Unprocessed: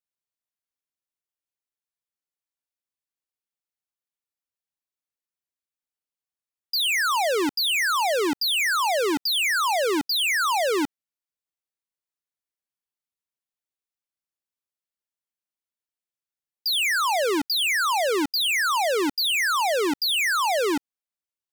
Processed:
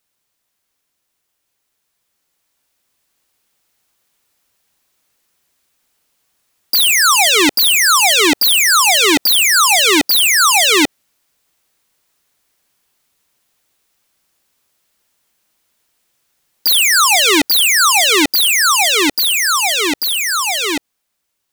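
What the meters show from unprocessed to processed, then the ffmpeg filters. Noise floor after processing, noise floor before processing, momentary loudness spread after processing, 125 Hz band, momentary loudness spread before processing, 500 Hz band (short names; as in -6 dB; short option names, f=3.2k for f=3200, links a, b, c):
-72 dBFS, under -85 dBFS, 6 LU, n/a, 3 LU, +3.5 dB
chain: -filter_complex "[0:a]acrossover=split=750[a][b];[b]alimiter=level_in=0.5dB:limit=-24dB:level=0:latency=1:release=76,volume=-0.5dB[c];[a][c]amix=inputs=2:normalize=0,aeval=exprs='0.112*sin(PI/2*4.47*val(0)/0.112)':c=same,dynaudnorm=f=490:g=11:m=7dB,volume=4dB"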